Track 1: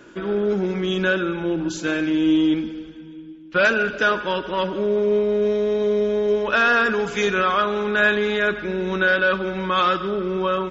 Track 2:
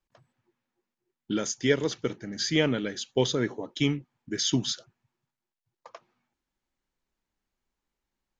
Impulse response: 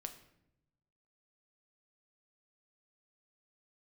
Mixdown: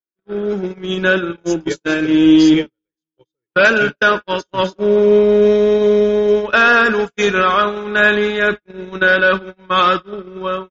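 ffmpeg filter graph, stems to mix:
-filter_complex "[0:a]volume=0.5dB[link_01];[1:a]aecho=1:1:2.2:0.75,volume=-8dB[link_02];[link_01][link_02]amix=inputs=2:normalize=0,agate=range=-58dB:threshold=-21dB:ratio=16:detection=peak,dynaudnorm=framelen=230:gausssize=7:maxgain=11.5dB"

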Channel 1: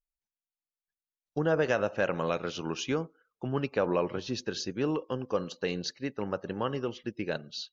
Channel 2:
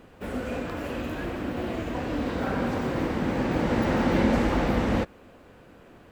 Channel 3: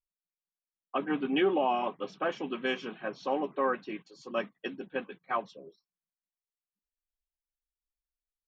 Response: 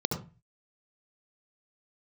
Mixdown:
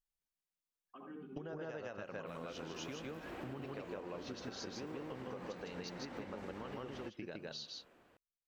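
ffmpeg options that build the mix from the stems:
-filter_complex "[0:a]volume=-2.5dB,asplit=2[link_01][link_02];[link_02]volume=-7dB[link_03];[1:a]lowshelf=frequency=250:gain=-11.5,alimiter=level_in=2.5dB:limit=-24dB:level=0:latency=1:release=439,volume=-2.5dB,dynaudnorm=framelen=120:gausssize=9:maxgain=4dB,adelay=2050,volume=-12dB[link_04];[2:a]acompressor=threshold=-40dB:ratio=3,volume=-14dB,asplit=2[link_05][link_06];[link_06]volume=-7.5dB[link_07];[link_01][link_05]amix=inputs=2:normalize=0,acompressor=threshold=-37dB:ratio=6,volume=0dB[link_08];[3:a]atrim=start_sample=2205[link_09];[link_07][link_09]afir=irnorm=-1:irlink=0[link_10];[link_03]aecho=0:1:157:1[link_11];[link_04][link_08][link_10][link_11]amix=inputs=4:normalize=0,acompressor=threshold=-42dB:ratio=6"

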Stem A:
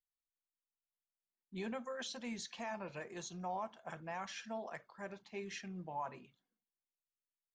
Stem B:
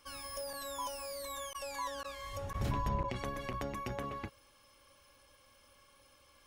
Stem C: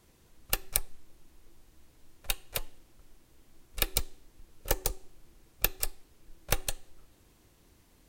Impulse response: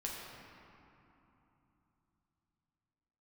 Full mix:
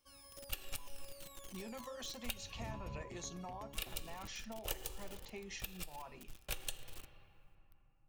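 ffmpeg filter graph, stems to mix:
-filter_complex "[0:a]bandreject=frequency=1600:width=7.3,acompressor=threshold=-47dB:ratio=6,volume=1.5dB[link_01];[1:a]equalizer=frequency=1400:width_type=o:width=2:gain=-7.5,volume=-11.5dB[link_02];[2:a]equalizer=frequency=3000:width_type=o:width=0.53:gain=10.5,alimiter=limit=-10dB:level=0:latency=1:release=269,aeval=exprs='val(0)*gte(abs(val(0)),0.00376)':channel_layout=same,volume=-2.5dB,asplit=3[link_03][link_04][link_05];[link_03]atrim=end=2.34,asetpts=PTS-STARTPTS,afade=type=out:start_time=2.336:duration=0.004:curve=hsin[link_06];[link_04]atrim=start=2.34:end=3.68,asetpts=PTS-STARTPTS,volume=0[link_07];[link_05]atrim=start=3.68,asetpts=PTS-STARTPTS,afade=type=in:duration=0.004:curve=hsin[link_08];[link_06][link_07][link_08]concat=n=3:v=0:a=1,asplit=2[link_09][link_10];[link_10]volume=-14.5dB[link_11];[link_01][link_09]amix=inputs=2:normalize=0,highshelf=frequency=5100:gain=7,alimiter=limit=-16.5dB:level=0:latency=1:release=128,volume=0dB[link_12];[3:a]atrim=start_sample=2205[link_13];[link_11][link_13]afir=irnorm=-1:irlink=0[link_14];[link_02][link_12][link_14]amix=inputs=3:normalize=0,alimiter=limit=-23.5dB:level=0:latency=1:release=243"

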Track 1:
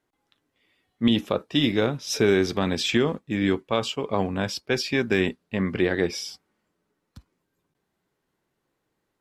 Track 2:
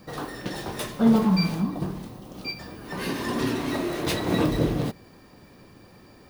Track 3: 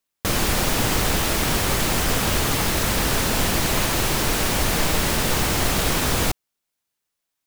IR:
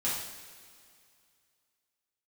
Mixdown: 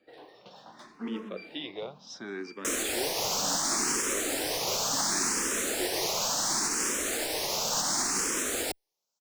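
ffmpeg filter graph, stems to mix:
-filter_complex "[0:a]volume=-11.5dB[link_01];[1:a]acontrast=50,volume=-18dB[link_02];[2:a]highshelf=frequency=4800:width_type=q:width=1.5:gain=14,alimiter=limit=-4.5dB:level=0:latency=1:release=104,adelay=2400,volume=-2.5dB[link_03];[link_01][link_02][link_03]amix=inputs=3:normalize=0,acrossover=split=230 5900:gain=0.0794 1 0.112[link_04][link_05][link_06];[link_04][link_05][link_06]amix=inputs=3:normalize=0,asplit=2[link_07][link_08];[link_08]afreqshift=0.7[link_09];[link_07][link_09]amix=inputs=2:normalize=1"

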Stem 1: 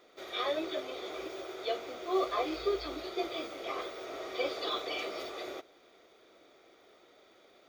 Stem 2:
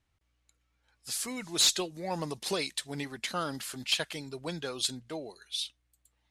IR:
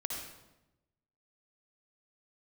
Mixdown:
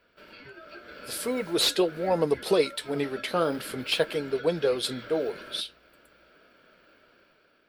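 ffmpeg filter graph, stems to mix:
-filter_complex "[0:a]acompressor=threshold=-42dB:ratio=12,aeval=exprs='val(0)*sin(2*PI*970*n/s)':channel_layout=same,volume=3dB[link_01];[1:a]equalizer=frequency=460:width_type=o:width=0.81:gain=13.5,volume=1dB[link_02];[link_01][link_02]amix=inputs=2:normalize=0,equalizer=frequency=6700:width_type=o:width=0.63:gain=-12.5,dynaudnorm=framelen=180:gausssize=7:maxgain=6.5dB,flanger=delay=4.1:depth=8.4:regen=-67:speed=0.46:shape=sinusoidal"

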